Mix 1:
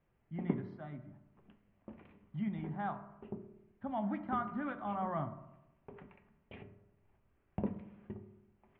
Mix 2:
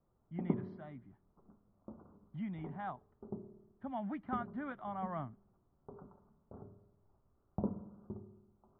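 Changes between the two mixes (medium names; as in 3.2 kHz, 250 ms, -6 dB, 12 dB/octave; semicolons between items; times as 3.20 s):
speech: send off; background: add steep low-pass 1.4 kHz 96 dB/octave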